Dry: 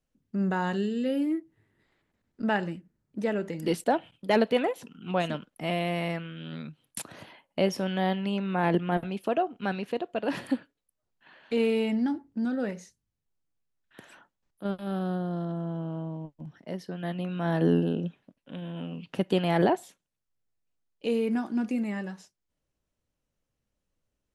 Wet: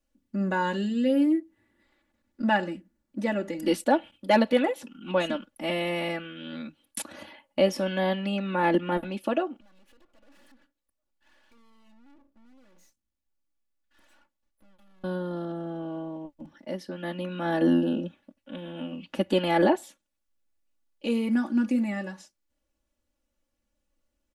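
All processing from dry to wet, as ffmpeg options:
ffmpeg -i in.wav -filter_complex "[0:a]asettb=1/sr,asplit=3[link_01][link_02][link_03];[link_01]atrim=end=9.604[link_04];[link_02]atrim=start=9.6:end=15.04,asetpts=PTS-STARTPTS,afade=type=in:duration=0.004:curve=qsin,afade=type=out:start_time=5.436:duration=0.004:curve=qsin,acompressor=threshold=-38dB:ratio=10:attack=3.2:release=140:knee=1:detection=peak,aeval=exprs='max(val(0),0)':channel_layout=same,aeval=exprs='(tanh(224*val(0)+0.7)-tanh(0.7))/224':channel_layout=same[link_05];[link_03]atrim=start=15.036[link_06];[link_04][link_05]acrossfade=duration=0.004:curve1=hsin:curve2=qsin[link_07];[link_07][link_06]acrossfade=duration=0.004:curve1=qsin:curve2=hsin,equalizer=frequency=120:width=2.6:gain=-5.5,bandreject=frequency=50:width_type=h:width=6,bandreject=frequency=100:width_type=h:width=6,aecho=1:1:3.5:0.94" out.wav

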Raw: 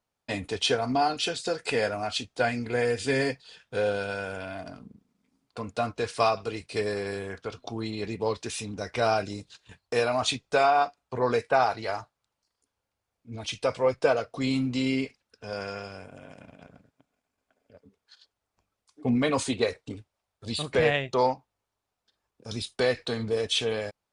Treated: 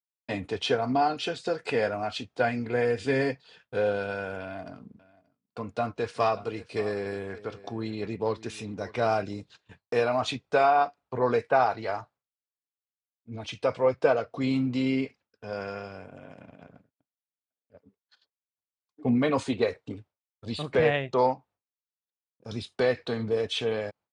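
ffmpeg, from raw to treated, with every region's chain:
ffmpeg -i in.wav -filter_complex "[0:a]asettb=1/sr,asplit=3[link_01][link_02][link_03];[link_01]atrim=end=4.414[link_04];[link_02]atrim=start=4.41:end=9.22,asetpts=PTS-STARTPTS,afade=type=in:duration=0.004:curve=qsin,afade=type=out:start_time=4.806:duration=0.004:curve=qsin,aeval=exprs='(tanh(5.01*val(0)+0.3)-tanh(0.3))/5.01':channel_layout=same,highshelf=frequency=9400:gain=5,aecho=1:1:581:0.119,atrim=end_sample=212121[link_05];[link_03]atrim=start=9.216[link_06];[link_04][link_05]acrossfade=duration=0.004:curve1=hsin:curve2=qsin[link_07];[link_07][link_06]acrossfade=duration=0.004:curve1=qsin:curve2=hsin,highpass=82,agate=range=-33dB:threshold=-51dB:ratio=3:detection=peak,aemphasis=mode=reproduction:type=75fm" out.wav

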